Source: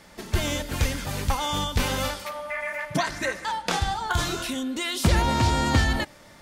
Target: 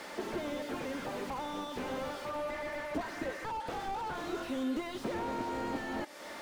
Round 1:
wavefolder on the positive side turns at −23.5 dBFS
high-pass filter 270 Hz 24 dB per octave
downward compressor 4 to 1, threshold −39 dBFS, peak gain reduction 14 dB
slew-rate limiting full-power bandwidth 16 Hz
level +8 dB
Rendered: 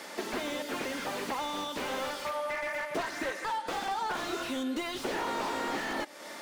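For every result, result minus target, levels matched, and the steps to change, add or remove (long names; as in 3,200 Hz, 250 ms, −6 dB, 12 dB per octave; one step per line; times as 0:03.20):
wavefolder on the positive side: distortion +27 dB; slew-rate limiting: distortion −7 dB
change: wavefolder on the positive side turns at −13 dBFS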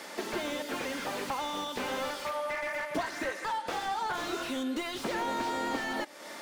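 slew-rate limiting: distortion −7 dB
change: slew-rate limiting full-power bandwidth 6 Hz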